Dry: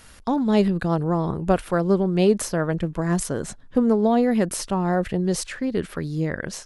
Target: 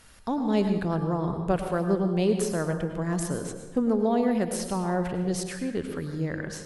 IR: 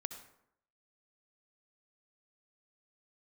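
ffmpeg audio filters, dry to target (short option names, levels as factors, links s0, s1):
-filter_complex "[1:a]atrim=start_sample=2205,asetrate=28665,aresample=44100[s0];[0:a][s0]afir=irnorm=-1:irlink=0,volume=0.531"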